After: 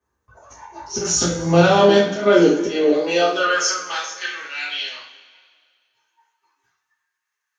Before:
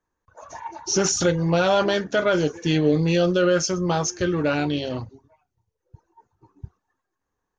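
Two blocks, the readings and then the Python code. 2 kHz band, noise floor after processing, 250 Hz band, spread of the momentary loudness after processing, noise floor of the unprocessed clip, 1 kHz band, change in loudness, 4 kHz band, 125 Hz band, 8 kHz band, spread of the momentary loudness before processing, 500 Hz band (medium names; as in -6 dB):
+5.5 dB, -80 dBFS, +2.0 dB, 14 LU, -81 dBFS, +5.5 dB, +3.5 dB, +5.0 dB, -0.5 dB, +3.0 dB, 10 LU, +4.5 dB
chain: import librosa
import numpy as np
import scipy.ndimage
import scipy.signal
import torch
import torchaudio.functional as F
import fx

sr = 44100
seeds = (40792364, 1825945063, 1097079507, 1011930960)

y = fx.filter_sweep_highpass(x, sr, from_hz=72.0, to_hz=2000.0, start_s=1.41, end_s=4.05, q=1.8)
y = fx.auto_swell(y, sr, attack_ms=169.0)
y = fx.rev_double_slope(y, sr, seeds[0], early_s=0.4, late_s=2.0, knee_db=-18, drr_db=-8.5)
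y = y * 10.0 ** (-3.0 / 20.0)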